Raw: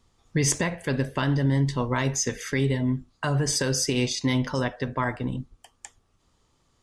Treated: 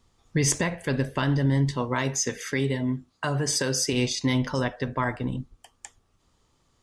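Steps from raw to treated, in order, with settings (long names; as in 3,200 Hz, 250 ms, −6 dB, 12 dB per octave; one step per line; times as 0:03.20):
0:01.71–0:03.93: high-pass filter 150 Hz 6 dB per octave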